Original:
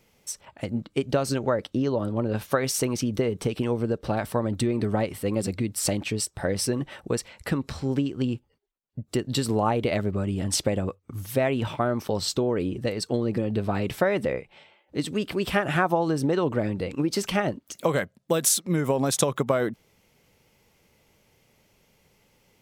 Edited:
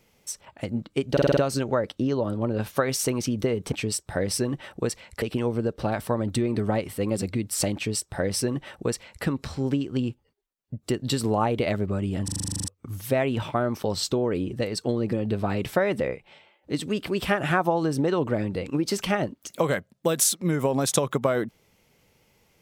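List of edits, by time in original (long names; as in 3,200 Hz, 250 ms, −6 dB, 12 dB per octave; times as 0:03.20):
0:01.12: stutter 0.05 s, 6 plays
0:06.00–0:07.50: duplicate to 0:03.47
0:10.49: stutter in place 0.04 s, 11 plays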